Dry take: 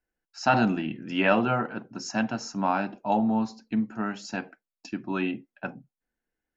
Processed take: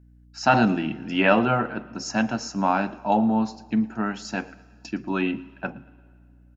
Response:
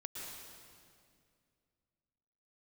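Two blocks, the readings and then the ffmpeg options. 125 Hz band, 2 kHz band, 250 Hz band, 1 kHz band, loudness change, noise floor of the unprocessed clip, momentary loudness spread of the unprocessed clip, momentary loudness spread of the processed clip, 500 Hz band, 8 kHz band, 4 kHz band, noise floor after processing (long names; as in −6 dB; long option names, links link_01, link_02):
+3.5 dB, +3.5 dB, +3.5 dB, +3.5 dB, +3.5 dB, below −85 dBFS, 14 LU, 14 LU, +3.5 dB, can't be measured, +3.5 dB, −53 dBFS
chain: -filter_complex "[0:a]aeval=exprs='val(0)+0.00178*(sin(2*PI*60*n/s)+sin(2*PI*2*60*n/s)/2+sin(2*PI*3*60*n/s)/3+sin(2*PI*4*60*n/s)/4+sin(2*PI*5*60*n/s)/5)':channel_layout=same,aecho=1:1:114|228|342:0.0794|0.0294|0.0109,asplit=2[link_01][link_02];[1:a]atrim=start_sample=2205[link_03];[link_02][link_03]afir=irnorm=-1:irlink=0,volume=-19.5dB[link_04];[link_01][link_04]amix=inputs=2:normalize=0,volume=3dB"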